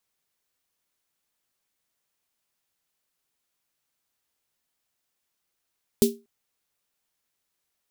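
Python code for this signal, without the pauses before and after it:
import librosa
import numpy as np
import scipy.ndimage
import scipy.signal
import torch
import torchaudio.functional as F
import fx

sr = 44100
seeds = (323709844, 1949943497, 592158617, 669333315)

y = fx.drum_snare(sr, seeds[0], length_s=0.24, hz=230.0, second_hz=400.0, noise_db=-7.0, noise_from_hz=3200.0, decay_s=0.26, noise_decay_s=0.19)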